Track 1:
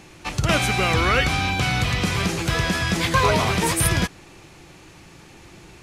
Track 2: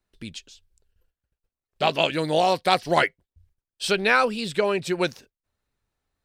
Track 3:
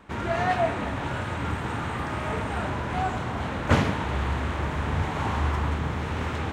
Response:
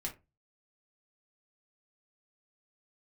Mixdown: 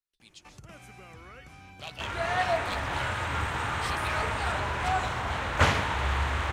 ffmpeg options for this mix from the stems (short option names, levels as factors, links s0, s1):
-filter_complex "[0:a]equalizer=f=3900:t=o:w=0.71:g=-9,acompressor=threshold=0.0251:ratio=2.5,adelay=200,volume=0.126[s0];[1:a]tiltshelf=f=1300:g=-8.5,aeval=exprs='clip(val(0),-1,0.282)':c=same,volume=0.112[s1];[2:a]equalizer=f=220:t=o:w=2.4:g=-14,dynaudnorm=f=290:g=5:m=1.58,adelay=1900,volume=1[s2];[s0][s1][s2]amix=inputs=3:normalize=0"